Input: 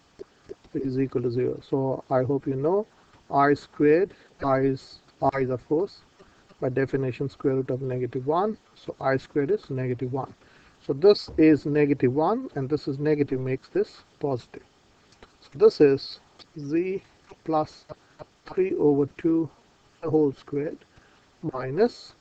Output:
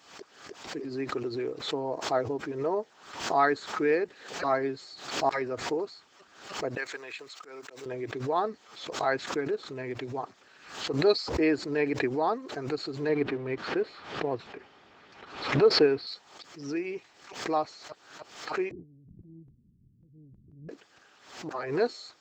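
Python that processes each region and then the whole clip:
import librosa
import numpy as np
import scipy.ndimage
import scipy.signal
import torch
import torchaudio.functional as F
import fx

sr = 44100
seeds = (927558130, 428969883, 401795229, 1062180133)

y = fx.chain(x, sr, fx.highpass(hz=1000.0, slope=6),
    fx.tilt_eq(slope=2.0),
    fx.auto_swell(attack_ms=112.0), at=(6.77, 7.86))
y = fx.chain(y, sr, fx.law_mismatch(coded='mu'),
    fx.lowpass(hz=2900.0, slope=12),
    fx.low_shelf(hz=270.0, db=5.0), at=(13.09, 16.07))
y = fx.chain(y, sr, fx.cheby2_lowpass(hz=660.0, order=4, stop_db=60),
    fx.tilt_eq(slope=-3.5),
    fx.over_compress(threshold_db=-37.0, ratio=-1.0), at=(18.71, 20.69))
y = fx.highpass(y, sr, hz=780.0, slope=6)
y = fx.pre_swell(y, sr, db_per_s=89.0)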